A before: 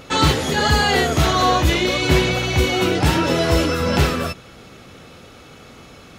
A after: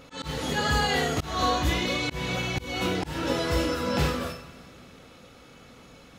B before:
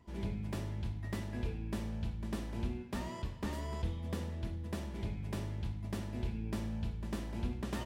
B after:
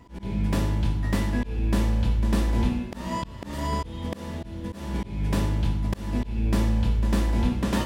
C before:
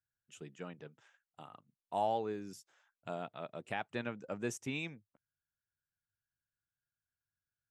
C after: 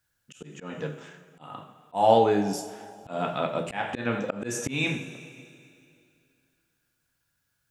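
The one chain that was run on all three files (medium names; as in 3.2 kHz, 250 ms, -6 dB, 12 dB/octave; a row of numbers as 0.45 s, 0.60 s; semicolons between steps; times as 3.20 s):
two-slope reverb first 0.45 s, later 2.5 s, from -17 dB, DRR 3 dB; slow attack 225 ms; normalise loudness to -27 LUFS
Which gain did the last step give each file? -9.5 dB, +12.0 dB, +16.0 dB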